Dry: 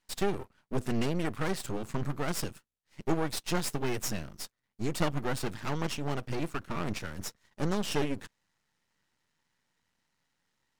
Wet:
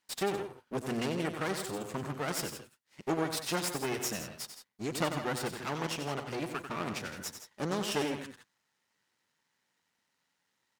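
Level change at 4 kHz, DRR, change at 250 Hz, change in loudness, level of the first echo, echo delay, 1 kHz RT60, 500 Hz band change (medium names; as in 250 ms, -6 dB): +1.0 dB, no reverb, -2.5 dB, -1.0 dB, -8.5 dB, 93 ms, no reverb, -0.5 dB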